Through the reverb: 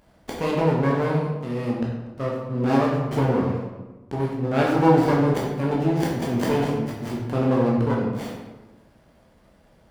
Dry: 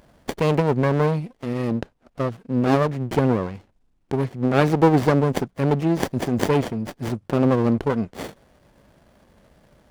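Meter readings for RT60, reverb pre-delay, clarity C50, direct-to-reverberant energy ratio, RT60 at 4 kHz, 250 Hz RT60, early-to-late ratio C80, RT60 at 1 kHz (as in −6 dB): 1.2 s, 11 ms, 2.0 dB, −4.0 dB, 0.75 s, 1.4 s, 4.5 dB, 1.1 s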